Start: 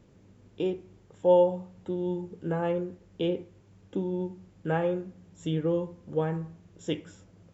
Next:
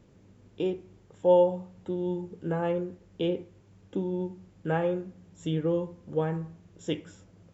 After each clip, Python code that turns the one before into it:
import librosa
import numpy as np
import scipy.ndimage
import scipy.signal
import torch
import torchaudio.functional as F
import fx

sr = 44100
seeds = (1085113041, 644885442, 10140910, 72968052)

y = x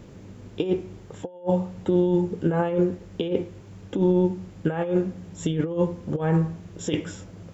y = fx.over_compress(x, sr, threshold_db=-31.0, ratio=-0.5)
y = y * librosa.db_to_amplitude(9.0)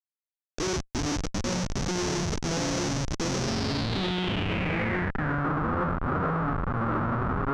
y = fx.echo_pitch(x, sr, ms=197, semitones=-4, count=3, db_per_echo=-3.0)
y = fx.schmitt(y, sr, flips_db=-29.0)
y = fx.filter_sweep_lowpass(y, sr, from_hz=6000.0, to_hz=1300.0, start_s=3.39, end_s=5.53, q=4.8)
y = y * librosa.db_to_amplitude(-5.5)